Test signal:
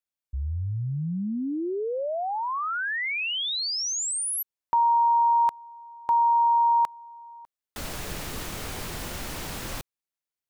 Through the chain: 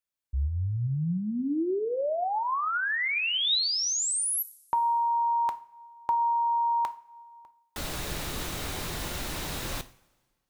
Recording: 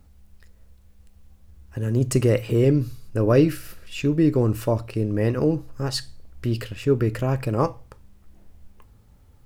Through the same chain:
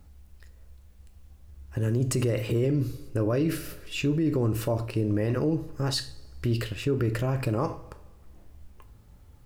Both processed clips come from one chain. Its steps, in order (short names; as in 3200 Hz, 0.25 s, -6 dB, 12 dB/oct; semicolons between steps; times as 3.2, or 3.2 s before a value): two-slope reverb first 0.4 s, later 1.6 s, from -18 dB, DRR 10.5 dB; limiter -18 dBFS; dynamic EQ 3800 Hz, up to +5 dB, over -54 dBFS, Q 6.8